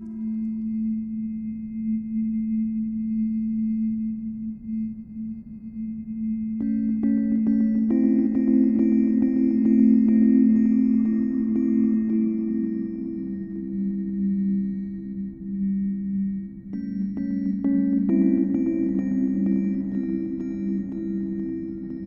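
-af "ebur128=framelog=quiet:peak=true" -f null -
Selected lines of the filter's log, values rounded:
Integrated loudness:
  I:         -23.8 LUFS
  Threshold: -34.0 LUFS
Loudness range:
  LRA:         8.6 LU
  Threshold: -43.6 LUFS
  LRA low:   -28.0 LUFS
  LRA high:  -19.4 LUFS
True peak:
  Peak:       -8.6 dBFS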